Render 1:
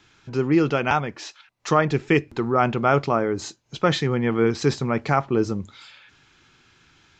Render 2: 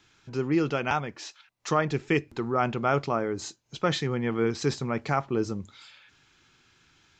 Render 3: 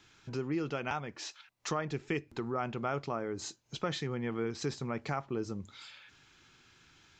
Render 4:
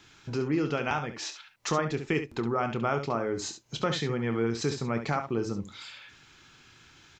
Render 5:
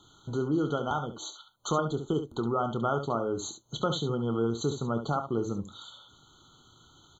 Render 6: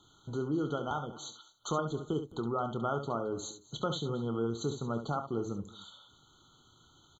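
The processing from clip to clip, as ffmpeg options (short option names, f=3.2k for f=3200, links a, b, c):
-af "highshelf=f=5.3k:g=5.5,volume=-6dB"
-af "acompressor=threshold=-38dB:ratio=2"
-af "aecho=1:1:26|69:0.251|0.335,volume=5.5dB"
-af "afftfilt=real='re*eq(mod(floor(b*sr/1024/1500),2),0)':imag='im*eq(mod(floor(b*sr/1024/1500),2),0)':win_size=1024:overlap=0.75"
-af "aecho=1:1:220:0.1,volume=-4.5dB"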